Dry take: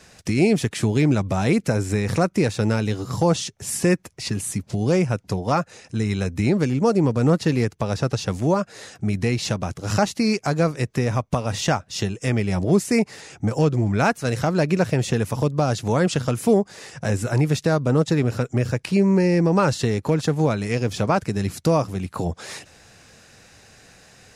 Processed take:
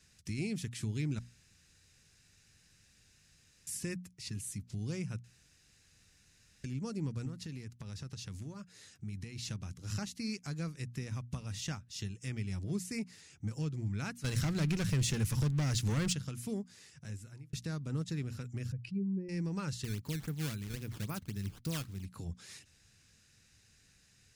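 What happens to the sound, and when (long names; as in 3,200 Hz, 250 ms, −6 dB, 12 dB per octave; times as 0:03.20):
0:01.19–0:03.67: fill with room tone
0:05.24–0:06.64: fill with room tone
0:07.25–0:09.36: downward compressor 12 to 1, threshold −21 dBFS
0:14.24–0:16.13: leveller curve on the samples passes 3
0:16.74–0:17.53: fade out
0:18.72–0:19.29: expanding power law on the bin magnitudes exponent 2
0:19.84–0:22.05: sample-and-hold swept by an LFO 13×, swing 160% 3.7 Hz
whole clip: guitar amp tone stack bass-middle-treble 6-0-2; mains-hum notches 60/120/180/240 Hz; level +1 dB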